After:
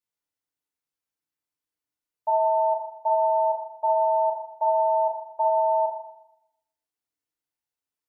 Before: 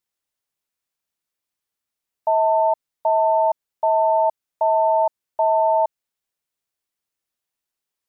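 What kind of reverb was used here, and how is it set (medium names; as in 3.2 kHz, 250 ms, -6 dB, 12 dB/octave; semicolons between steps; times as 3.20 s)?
FDN reverb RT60 0.8 s, low-frequency decay 1.1×, high-frequency decay 0.5×, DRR -4.5 dB; trim -11.5 dB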